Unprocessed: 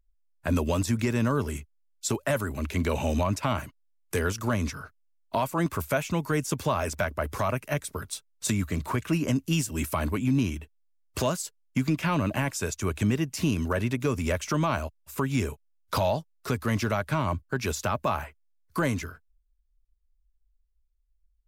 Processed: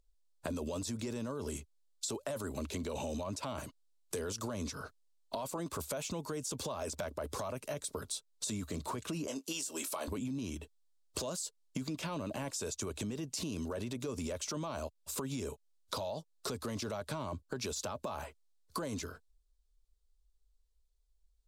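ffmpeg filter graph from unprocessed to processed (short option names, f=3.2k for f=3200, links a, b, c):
-filter_complex "[0:a]asettb=1/sr,asplit=3[a][b][c];[a]atrim=end=9.274[d];[b]atrim=start=9.27:end=10.08,asetpts=PTS-STARTPTS,afade=t=in:d=0.004:c=qsin,afade=t=out:st=0.806:d=0.004:c=qsin,highpass=470,asplit=2[e][f];[f]adelay=22,volume=-10.5dB[g];[e][g]amix=inputs=2:normalize=0,atrim=end_sample=35721[h];[c]atrim=start=10.076[i];[d][h]acrossfade=d=0.004:c1=hsin:c2=qsin[j];[j][i]acrossfade=d=0.004:c1=qsin:c2=hsin,equalizer=f=250:t=o:w=1:g=4,equalizer=f=500:t=o:w=1:g=9,equalizer=f=1k:t=o:w=1:g=4,equalizer=f=2k:t=o:w=1:g=-5,equalizer=f=4k:t=o:w=1:g=10,equalizer=f=8k:t=o:w=1:g=9,alimiter=limit=-18dB:level=0:latency=1:release=15,acompressor=threshold=-33dB:ratio=6,volume=-3dB"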